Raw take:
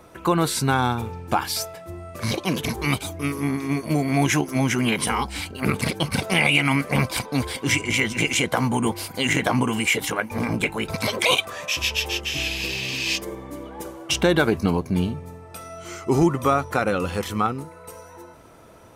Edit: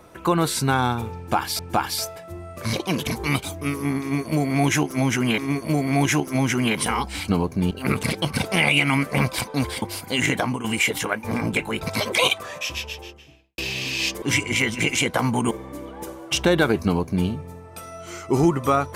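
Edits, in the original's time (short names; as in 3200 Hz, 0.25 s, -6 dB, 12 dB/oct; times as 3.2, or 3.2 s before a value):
1.17–1.59 loop, 2 plays
3.59–4.96 loop, 2 plays
7.6–8.89 move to 13.29
9.4–9.71 fade out, to -10.5 dB
11.4–12.65 studio fade out
14.62–15.05 copy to 5.49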